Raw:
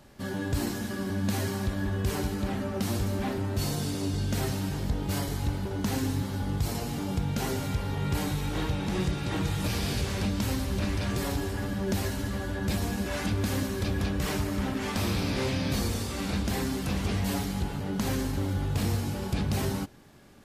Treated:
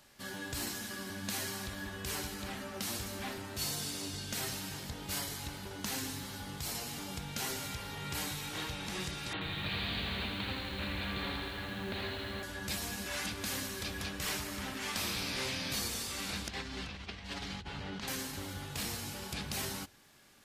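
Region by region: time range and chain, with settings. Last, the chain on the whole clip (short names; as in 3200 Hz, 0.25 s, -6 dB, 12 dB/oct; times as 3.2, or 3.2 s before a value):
9.33–12.43 steep low-pass 4300 Hz 96 dB/oct + lo-fi delay 82 ms, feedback 80%, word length 9-bit, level -6 dB
16.48–18.08 Chebyshev low-pass 3700 Hz + bell 66 Hz +9.5 dB 0.67 oct + negative-ratio compressor -31 dBFS
whole clip: tilt shelf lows -7.5 dB; notches 50/100 Hz; gain -6.5 dB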